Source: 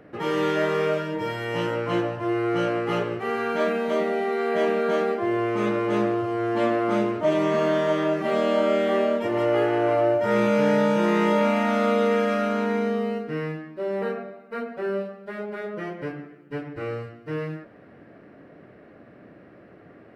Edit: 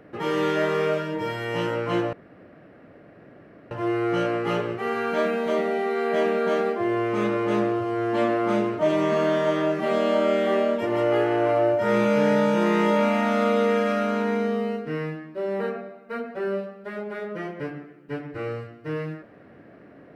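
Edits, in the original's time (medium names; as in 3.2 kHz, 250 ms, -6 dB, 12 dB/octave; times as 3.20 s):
2.13 s: insert room tone 1.58 s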